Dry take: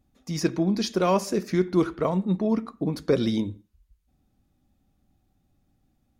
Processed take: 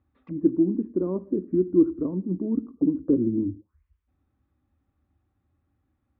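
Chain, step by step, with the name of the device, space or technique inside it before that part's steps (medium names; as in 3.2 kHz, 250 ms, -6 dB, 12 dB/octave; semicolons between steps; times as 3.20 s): envelope filter bass rig (touch-sensitive low-pass 290–4200 Hz down, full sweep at -28 dBFS; cabinet simulation 68–2000 Hz, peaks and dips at 77 Hz +7 dB, 140 Hz -6 dB, 210 Hz -9 dB, 450 Hz -3 dB, 700 Hz -9 dB, 1.1 kHz +5 dB); peaking EQ 160 Hz -5.5 dB 0.25 oct; trim -1 dB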